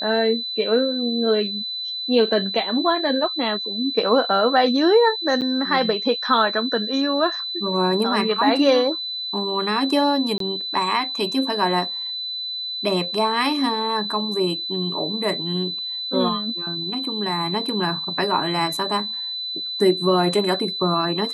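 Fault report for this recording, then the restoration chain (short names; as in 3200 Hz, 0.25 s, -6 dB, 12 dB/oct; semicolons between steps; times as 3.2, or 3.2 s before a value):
tone 4000 Hz -26 dBFS
5.41–5.42 gap 8.1 ms
10.38–10.4 gap 23 ms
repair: notch 4000 Hz, Q 30; interpolate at 5.41, 8.1 ms; interpolate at 10.38, 23 ms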